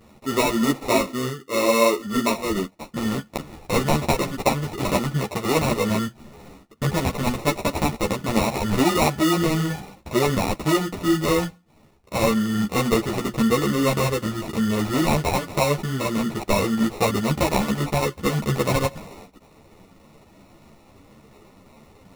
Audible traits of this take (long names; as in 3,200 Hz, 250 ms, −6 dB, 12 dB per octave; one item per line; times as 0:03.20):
aliases and images of a low sample rate 1,600 Hz, jitter 0%
a shimmering, thickened sound